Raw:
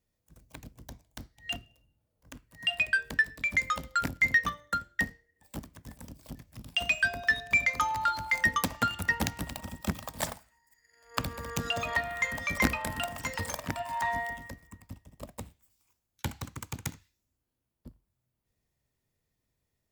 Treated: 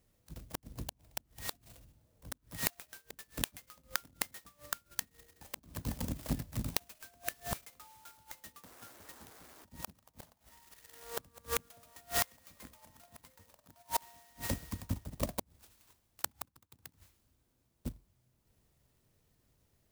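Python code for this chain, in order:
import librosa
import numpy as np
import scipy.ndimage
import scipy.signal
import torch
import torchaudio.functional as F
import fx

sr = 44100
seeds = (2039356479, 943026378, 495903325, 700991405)

y = fx.spec_paint(x, sr, seeds[0], shape='noise', start_s=8.65, length_s=1.0, low_hz=230.0, high_hz=2400.0, level_db=-30.0)
y = fx.gate_flip(y, sr, shuts_db=-27.0, range_db=-36)
y = fx.clock_jitter(y, sr, seeds[1], jitter_ms=0.12)
y = y * librosa.db_to_amplitude(9.0)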